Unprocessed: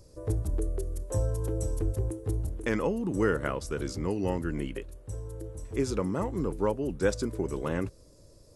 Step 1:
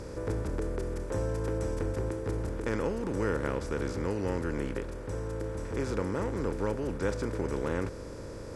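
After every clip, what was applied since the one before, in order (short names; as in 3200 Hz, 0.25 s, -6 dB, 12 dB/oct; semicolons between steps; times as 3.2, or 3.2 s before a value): per-bin compression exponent 0.4; high shelf 7600 Hz -9.5 dB; gain -8 dB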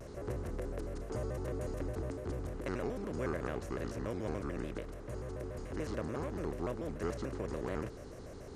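shaped vibrato square 6.9 Hz, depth 250 cents; gain -6.5 dB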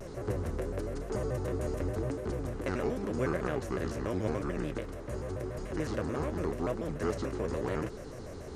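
flange 0.88 Hz, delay 4.6 ms, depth 9.4 ms, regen +46%; gain +9 dB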